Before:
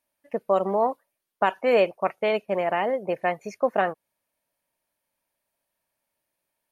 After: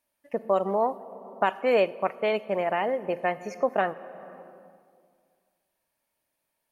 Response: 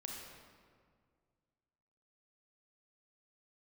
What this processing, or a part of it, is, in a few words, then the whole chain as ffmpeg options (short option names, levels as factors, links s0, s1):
compressed reverb return: -filter_complex "[0:a]asplit=2[s0][s1];[1:a]atrim=start_sample=2205[s2];[s1][s2]afir=irnorm=-1:irlink=0,acompressor=threshold=0.02:ratio=10,volume=0.891[s3];[s0][s3]amix=inputs=2:normalize=0,volume=0.708"